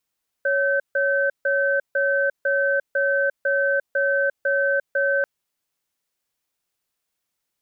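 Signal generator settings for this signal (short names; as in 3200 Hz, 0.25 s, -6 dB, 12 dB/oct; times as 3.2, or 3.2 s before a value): cadence 556 Hz, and 1540 Hz, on 0.35 s, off 0.15 s, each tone -20.5 dBFS 4.79 s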